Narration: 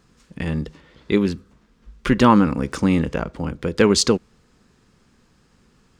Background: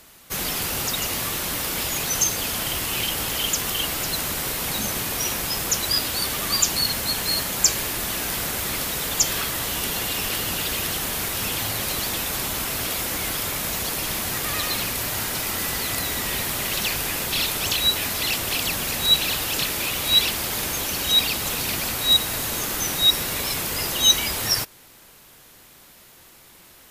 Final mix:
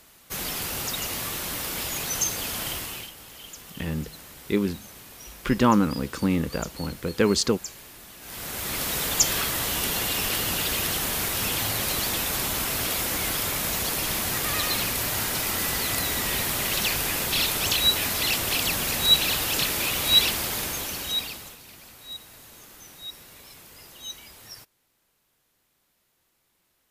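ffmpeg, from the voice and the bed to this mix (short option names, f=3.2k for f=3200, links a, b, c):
-filter_complex "[0:a]adelay=3400,volume=-5.5dB[a];[1:a]volume=14dB,afade=t=out:st=2.69:d=0.43:silence=0.188365,afade=t=in:st=8.2:d=0.75:silence=0.11885,afade=t=out:st=20.25:d=1.33:silence=0.0891251[b];[a][b]amix=inputs=2:normalize=0"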